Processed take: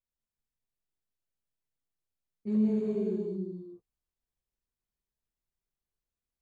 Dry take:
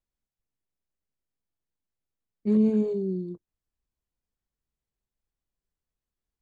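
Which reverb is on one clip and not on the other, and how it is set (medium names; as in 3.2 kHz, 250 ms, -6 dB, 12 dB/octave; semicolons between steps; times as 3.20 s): gated-style reverb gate 460 ms flat, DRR -3.5 dB; trim -9 dB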